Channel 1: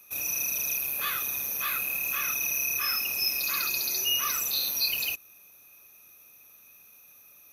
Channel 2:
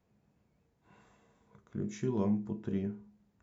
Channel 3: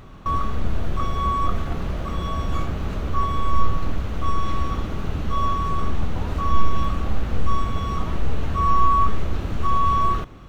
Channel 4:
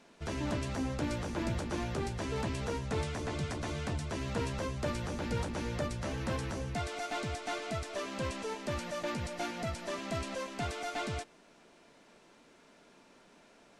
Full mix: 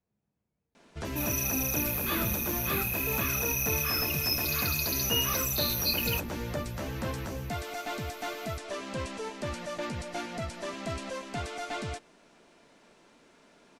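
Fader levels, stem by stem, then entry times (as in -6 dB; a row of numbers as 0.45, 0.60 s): -2.0 dB, -11.0 dB, off, +1.0 dB; 1.05 s, 0.00 s, off, 0.75 s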